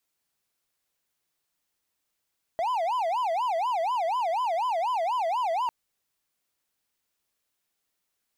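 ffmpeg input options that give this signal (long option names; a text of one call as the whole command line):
ffmpeg -f lavfi -i "aevalsrc='0.0794*(1-4*abs(mod((834.5*t-185.5/(2*PI*4.1)*sin(2*PI*4.1*t))+0.25,1)-0.5))':duration=3.1:sample_rate=44100" out.wav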